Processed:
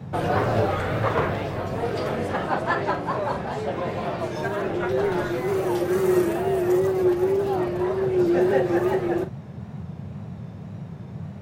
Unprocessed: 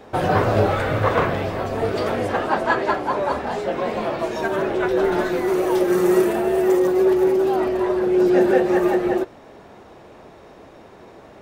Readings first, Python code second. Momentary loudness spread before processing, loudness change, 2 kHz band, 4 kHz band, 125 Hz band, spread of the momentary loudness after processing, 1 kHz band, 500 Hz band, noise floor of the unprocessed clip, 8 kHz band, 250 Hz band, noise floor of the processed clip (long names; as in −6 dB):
7 LU, −4.0 dB, −4.5 dB, −4.0 dB, 0.0 dB, 15 LU, −4.0 dB, −4.5 dB, −45 dBFS, −4.0 dB, −3.5 dB, −38 dBFS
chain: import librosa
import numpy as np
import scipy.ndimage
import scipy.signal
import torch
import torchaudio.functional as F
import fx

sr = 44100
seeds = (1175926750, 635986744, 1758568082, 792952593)

y = fx.wow_flutter(x, sr, seeds[0], rate_hz=2.1, depth_cents=78.0)
y = fx.doubler(y, sr, ms=44.0, db=-11)
y = fx.dmg_noise_band(y, sr, seeds[1], low_hz=87.0, high_hz=200.0, level_db=-31.0)
y = F.gain(torch.from_numpy(y), -4.5).numpy()